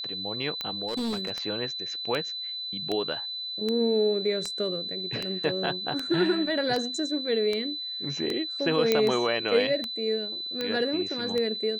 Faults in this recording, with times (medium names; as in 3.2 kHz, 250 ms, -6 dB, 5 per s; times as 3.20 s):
tick 78 rpm -16 dBFS
whine 4 kHz -32 dBFS
0.87–1.31 s: clipped -26.5 dBFS
8.92 s: pop -8 dBFS